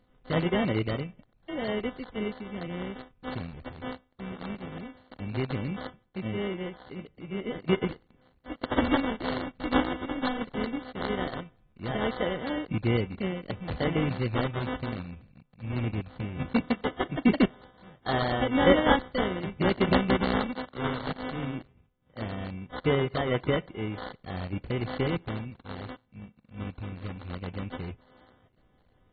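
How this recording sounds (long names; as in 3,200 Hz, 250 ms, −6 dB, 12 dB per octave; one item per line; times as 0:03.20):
a buzz of ramps at a fixed pitch in blocks of 16 samples
phaser sweep stages 2, 0.18 Hz, lowest notch 550–2,100 Hz
aliases and images of a low sample rate 2,500 Hz, jitter 0%
AAC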